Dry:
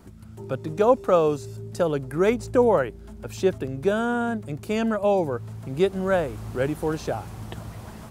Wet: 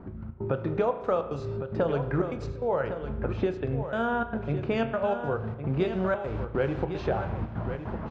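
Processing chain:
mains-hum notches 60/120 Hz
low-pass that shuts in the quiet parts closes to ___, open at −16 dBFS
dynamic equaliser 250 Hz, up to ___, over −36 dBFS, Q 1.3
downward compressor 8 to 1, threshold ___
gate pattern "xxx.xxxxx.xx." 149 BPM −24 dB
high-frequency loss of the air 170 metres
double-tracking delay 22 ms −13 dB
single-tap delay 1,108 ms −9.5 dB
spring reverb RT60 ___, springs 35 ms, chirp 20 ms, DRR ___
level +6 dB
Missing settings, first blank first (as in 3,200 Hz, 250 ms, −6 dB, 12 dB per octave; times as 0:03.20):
1,300 Hz, −6 dB, −29 dBFS, 1.1 s, 9.5 dB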